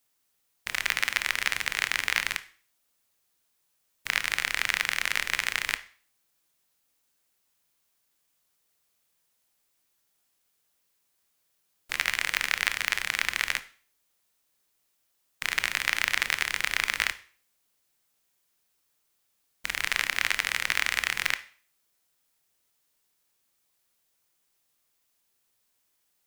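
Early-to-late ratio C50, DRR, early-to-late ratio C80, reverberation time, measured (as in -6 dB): 17.0 dB, 12.0 dB, 21.5 dB, 0.45 s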